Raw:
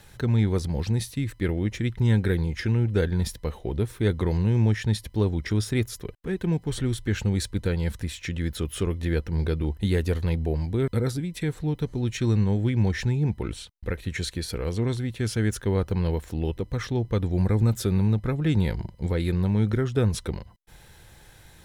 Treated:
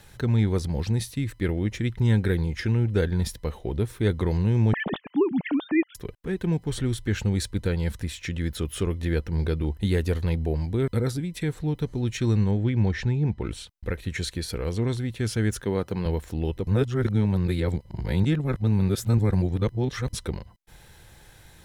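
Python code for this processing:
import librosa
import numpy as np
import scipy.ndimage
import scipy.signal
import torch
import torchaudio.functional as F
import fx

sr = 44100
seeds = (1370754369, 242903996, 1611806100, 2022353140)

y = fx.sine_speech(x, sr, at=(4.73, 5.95))
y = fx.air_absorb(y, sr, metres=90.0, at=(12.51, 13.45))
y = fx.highpass(y, sr, hz=140.0, slope=12, at=(15.64, 16.06))
y = fx.edit(y, sr, fx.reverse_span(start_s=16.67, length_s=3.46), tone=tone)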